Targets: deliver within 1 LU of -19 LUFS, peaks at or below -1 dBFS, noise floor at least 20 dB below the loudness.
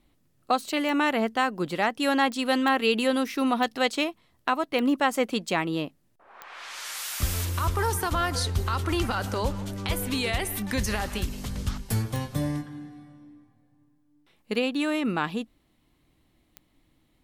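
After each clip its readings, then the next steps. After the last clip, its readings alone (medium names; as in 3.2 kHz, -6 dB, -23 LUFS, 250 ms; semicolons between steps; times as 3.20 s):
clicks found 8; loudness -27.0 LUFS; peak level -10.0 dBFS; loudness target -19.0 LUFS
-> de-click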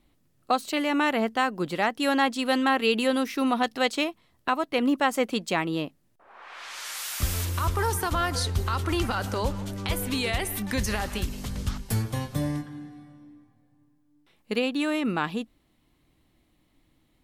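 clicks found 0; loudness -27.0 LUFS; peak level -10.5 dBFS; loudness target -19.0 LUFS
-> trim +8 dB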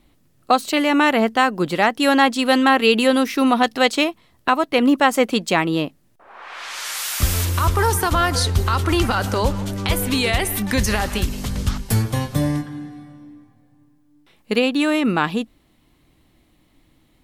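loudness -19.0 LUFS; peak level -2.5 dBFS; noise floor -59 dBFS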